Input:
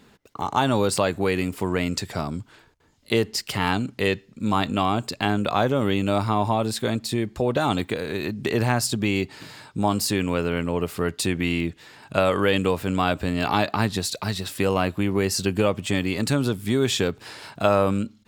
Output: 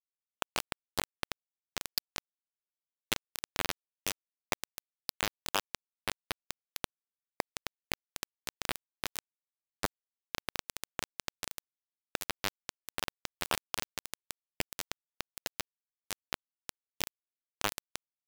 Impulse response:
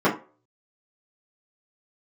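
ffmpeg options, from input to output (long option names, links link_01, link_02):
-filter_complex "[0:a]aphaser=in_gain=1:out_gain=1:delay=1.4:decay=0.32:speed=0.89:type=sinusoidal,aresample=11025,acrusher=bits=3:mode=log:mix=0:aa=0.000001,aresample=44100,bass=frequency=250:gain=-13,treble=frequency=4000:gain=1,aecho=1:1:3.4:0.43,asplit=2[link_01][link_02];[1:a]atrim=start_sample=2205,adelay=62[link_03];[link_02][link_03]afir=irnorm=-1:irlink=0,volume=-39.5dB[link_04];[link_01][link_04]amix=inputs=2:normalize=0,acompressor=threshold=-30dB:ratio=6,lowshelf=frequency=300:gain=-6,aeval=exprs='val(0)*sin(2*PI*100*n/s)':channel_layout=same,aecho=1:1:313|626|939:0.447|0.0759|0.0129,acrusher=bits=3:mix=0:aa=0.000001,volume=3.5dB"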